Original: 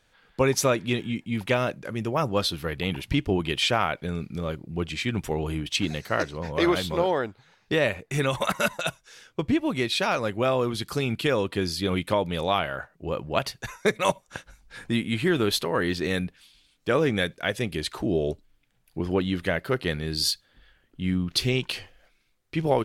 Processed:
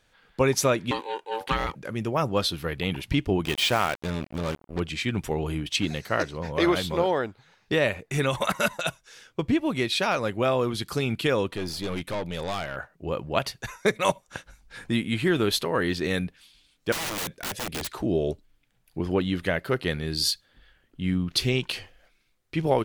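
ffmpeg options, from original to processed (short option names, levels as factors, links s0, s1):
-filter_complex "[0:a]asettb=1/sr,asplit=3[s0][s1][s2];[s0]atrim=end=0.914[s3];[s1]atrim=start=0.91:end=1.75,asetpts=PTS-STARTPTS,afade=t=in:d=0.004:c=qsin,afade=t=out:st=0.836:d=0.004:c=qsin,aeval=exprs='val(0)*sin(2*PI*670*n/s)':c=same[s4];[s2]atrim=start=1.746[s5];[s3][s4]acrossfade=d=0.004:c1=hsin:c2=qsin[s6];[s6][s5]acrossfade=d=0.004:c1=qsin:c2=hsin,asettb=1/sr,asplit=3[s7][s8][s9];[s7]atrim=end=3.454[s10];[s8]atrim=start=3.45:end=4.8,asetpts=PTS-STARTPTS,afade=t=in:d=0.004:c=qsin,afade=t=out:st=1.346:d=0.004:c=qsin,acrusher=bits=4:mix=0:aa=0.5[s11];[s9]atrim=start=4.796[s12];[s10][s11]acrossfade=d=0.004:c1=hsin:c2=qsin[s13];[s13][s12]acrossfade=d=0.004:c1=qsin:c2=hsin,asettb=1/sr,asplit=3[s14][s15][s16];[s14]atrim=end=11.514[s17];[s15]atrim=start=11.51:end=12.76,asetpts=PTS-STARTPTS,afade=t=in:d=0.004:c=qsin,afade=t=out:st=1.246:d=0.004:c=qsin,aeval=exprs='(tanh(20*val(0)+0.5)-tanh(0.5))/20':c=same[s18];[s16]atrim=start=12.756[s19];[s17][s18]acrossfade=d=0.004:c1=hsin:c2=qsin[s20];[s20][s19]acrossfade=d=0.004:c1=qsin:c2=hsin,asettb=1/sr,asplit=3[s21][s22][s23];[s21]atrim=end=16.924[s24];[s22]atrim=start=16.92:end=17.89,asetpts=PTS-STARTPTS,afade=t=in:d=0.004:c=qsin,afade=t=out:st=0.966:d=0.004:c=qsin,aeval=exprs='(mod(18.8*val(0)+1,2)-1)/18.8':c=same[s25];[s23]atrim=start=17.886[s26];[s24][s25]acrossfade=d=0.004:c1=hsin:c2=qsin[s27];[s27][s26]acrossfade=d=0.004:c1=qsin:c2=hsin"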